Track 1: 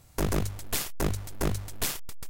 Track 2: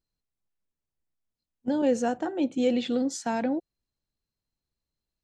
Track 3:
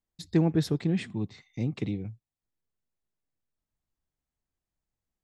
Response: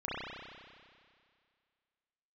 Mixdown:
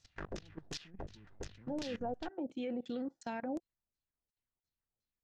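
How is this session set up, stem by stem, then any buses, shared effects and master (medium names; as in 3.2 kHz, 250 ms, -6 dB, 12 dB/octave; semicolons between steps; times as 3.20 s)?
-3.5 dB, 0.00 s, bus A, no send, high-order bell 3.2 kHz +10.5 dB 2.4 oct; band-stop 2.2 kHz, Q 9.9; auto duck -6 dB, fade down 1.65 s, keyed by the second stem
-9.0 dB, 0.00 s, no bus, no send, none
-8.0 dB, 0.00 s, bus A, no send, compression 12:1, threshold -26 dBFS, peak gain reduction 9 dB; hard clipper -24 dBFS, distortion -19 dB
bus A: 0.0 dB, compression 5:1, threshold -35 dBFS, peak gain reduction 10 dB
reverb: none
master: level held to a coarse grid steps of 19 dB; LFO low-pass saw down 2.8 Hz 480–7100 Hz; peak limiter -31 dBFS, peak gain reduction 10 dB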